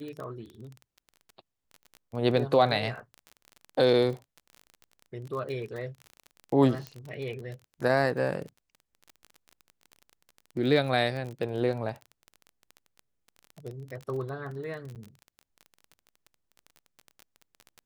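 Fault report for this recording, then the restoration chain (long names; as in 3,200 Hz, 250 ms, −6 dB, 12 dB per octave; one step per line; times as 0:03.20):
surface crackle 27 per second −35 dBFS
0:06.87: click −22 dBFS
0:14.95–0:14.96: drop-out 8.5 ms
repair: click removal
repair the gap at 0:14.95, 8.5 ms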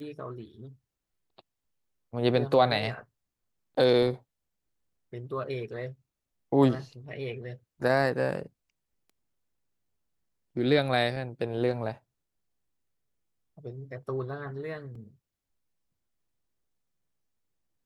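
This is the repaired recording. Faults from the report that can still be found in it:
none of them is left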